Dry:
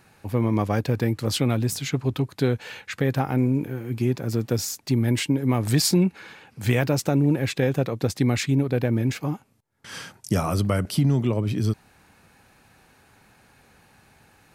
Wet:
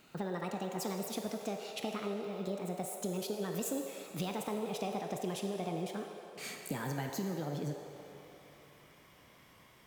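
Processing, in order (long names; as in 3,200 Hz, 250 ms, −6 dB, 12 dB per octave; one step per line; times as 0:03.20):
gliding playback speed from 167% → 128%
downward compressor 3 to 1, threshold −32 dBFS, peak gain reduction 12.5 dB
on a send: low shelf with overshoot 340 Hz −10.5 dB, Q 1.5 + convolution reverb RT60 3.4 s, pre-delay 19 ms, DRR 2.5 dB
on the sum: level −6 dB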